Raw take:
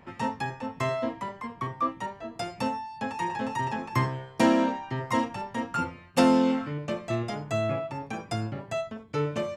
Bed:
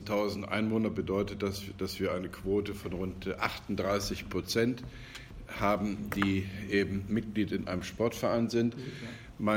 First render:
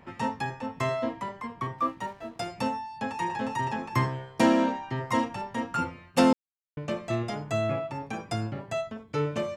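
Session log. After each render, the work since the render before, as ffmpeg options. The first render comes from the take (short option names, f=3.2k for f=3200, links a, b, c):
-filter_complex "[0:a]asettb=1/sr,asplit=3[a][b][c];[a]atrim=end=1.784[d];[b]atrim=start=1.78:end=2.46,asetpts=PTS-STARTPTS,afade=t=in:d=0.004:c=qsin,afade=t=out:st=0.676:d=0.004:c=qsin,aeval=exprs='sgn(val(0))*max(abs(val(0))-0.00158,0)':c=same[e];[c]atrim=start=2.456[f];[d][e]acrossfade=d=0.004:c1=hsin:c2=qsin[g];[g][f]acrossfade=d=0.004:c1=qsin:c2=hsin,asplit=3[h][i][j];[h]atrim=end=6.33,asetpts=PTS-STARTPTS,afade=t=out:st=6.326:d=0.004:c=hsin[k];[i]atrim=start=6.33:end=6.77,asetpts=PTS-STARTPTS,volume=0[l];[j]atrim=start=6.77,asetpts=PTS-STARTPTS,afade=t=in:d=0.004:c=hsin[m];[k][l][m]concat=n=3:v=0:a=1"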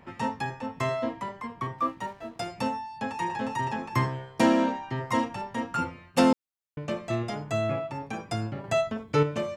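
-filter_complex "[0:a]asplit=3[a][b][c];[a]atrim=end=8.642[d];[b]atrim=start=8.638:end=9.232,asetpts=PTS-STARTPTS,volume=6dB[e];[c]atrim=start=9.228[f];[d][e]acrossfade=d=0.004:c1=hsin:c2=hsin[g];[g][f]acrossfade=d=0.004:c1=hsin:c2=hsin"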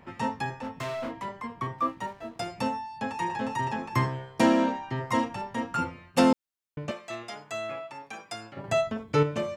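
-filter_complex "[0:a]asettb=1/sr,asplit=3[a][b][c];[a]atrim=end=0.594[d];[b]atrim=start=0.59:end=1.25,asetpts=PTS-STARTPTS,afade=t=in:d=0.004:c=qsin,afade=t=out:st=0.656:d=0.004:c=qsin,volume=31dB,asoftclip=hard,volume=-31dB[e];[c]atrim=start=1.246[f];[d][e]acrossfade=d=0.004:c1=hsin:c2=qsin[g];[g][f]acrossfade=d=0.004:c1=qsin:c2=hsin,asettb=1/sr,asplit=3[h][i][j];[h]atrim=end=6.914[k];[i]atrim=start=6.91:end=8.57,asetpts=PTS-STARTPTS,afade=t=in:d=0.004:c=qsin,afade=t=out:st=1.656:d=0.004:c=qsin,highpass=f=1.2k:p=1[l];[j]atrim=start=8.566[m];[k][l]acrossfade=d=0.004:c1=hsin:c2=qsin[n];[n][m]acrossfade=d=0.004:c1=qsin:c2=hsin"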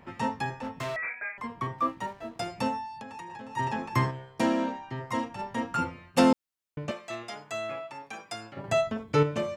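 -filter_complex "[0:a]asettb=1/sr,asplit=3[a][b][c];[a]atrim=end=0.964[d];[b]atrim=start=0.96:end=1.38,asetpts=PTS-STARTPTS,afade=t=in:d=0.004:c=qsin,afade=t=out:st=0.416:d=0.004:c=qsin,lowpass=f=2.2k:t=q:w=0.5098,lowpass=f=2.2k:t=q:w=0.6013,lowpass=f=2.2k:t=q:w=0.9,lowpass=f=2.2k:t=q:w=2.563,afreqshift=-2600[e];[c]atrim=start=1.376[f];[d][e]acrossfade=d=0.004:c1=hsin:c2=qsin[g];[g][f]acrossfade=d=0.004:c1=qsin:c2=hsin,asplit=3[h][i][j];[h]afade=t=out:st=2.92:d=0.02[k];[i]acompressor=threshold=-38dB:ratio=16:attack=3.2:release=140:knee=1:detection=peak,afade=t=in:st=2.92:d=0.02,afade=t=out:st=3.56:d=0.02[l];[j]afade=t=in:st=3.56:d=0.02[m];[k][l][m]amix=inputs=3:normalize=0,asplit=3[n][o][p];[n]atrim=end=4.112[q];[o]atrim=start=4.108:end=5.392,asetpts=PTS-STARTPTS,volume=-4.5dB[r];[p]atrim=start=5.388[s];[q][r]acrossfade=d=0.004:c1=hsin:c2=hsin[t];[t][s]acrossfade=d=0.004:c1=hsin:c2=hsin"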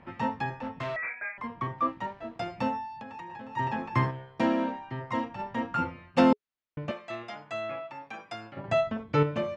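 -af "lowpass=3.4k,bandreject=f=420:w=13"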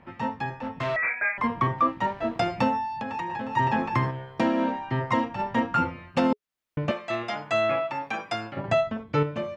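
-af "dynaudnorm=f=100:g=21:m=12.5dB,alimiter=limit=-13dB:level=0:latency=1:release=464"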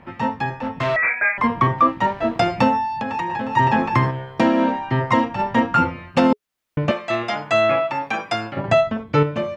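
-af "volume=7dB"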